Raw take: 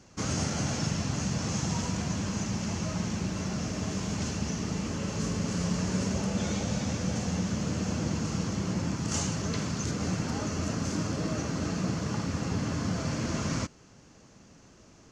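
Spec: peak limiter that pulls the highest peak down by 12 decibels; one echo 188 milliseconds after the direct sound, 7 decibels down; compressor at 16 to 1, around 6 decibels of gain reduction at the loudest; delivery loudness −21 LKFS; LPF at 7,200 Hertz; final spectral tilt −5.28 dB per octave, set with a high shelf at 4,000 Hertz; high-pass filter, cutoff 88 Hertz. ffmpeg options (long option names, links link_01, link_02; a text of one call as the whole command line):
ffmpeg -i in.wav -af "highpass=88,lowpass=7200,highshelf=frequency=4000:gain=-3,acompressor=threshold=-32dB:ratio=16,alimiter=level_in=11.5dB:limit=-24dB:level=0:latency=1,volume=-11.5dB,aecho=1:1:188:0.447,volume=22dB" out.wav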